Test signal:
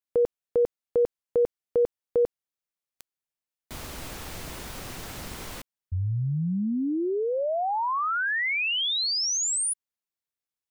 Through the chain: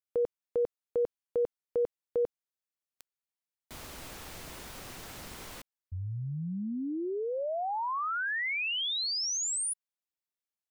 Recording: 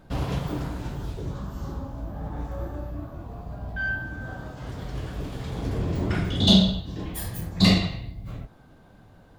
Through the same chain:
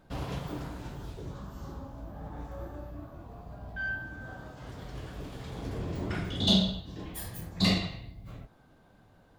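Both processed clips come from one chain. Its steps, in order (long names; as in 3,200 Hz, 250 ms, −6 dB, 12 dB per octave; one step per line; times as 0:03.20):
low-shelf EQ 250 Hz −4 dB
level −5.5 dB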